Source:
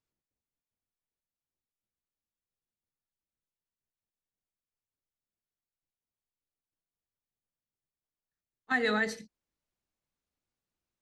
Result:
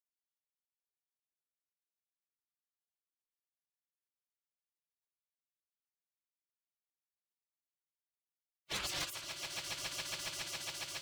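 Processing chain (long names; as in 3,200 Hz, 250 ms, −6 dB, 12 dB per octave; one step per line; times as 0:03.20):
lower of the sound and its delayed copy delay 3.8 ms
echo that builds up and dies away 138 ms, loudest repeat 8, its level −8.5 dB
gate on every frequency bin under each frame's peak −25 dB weak
level +7.5 dB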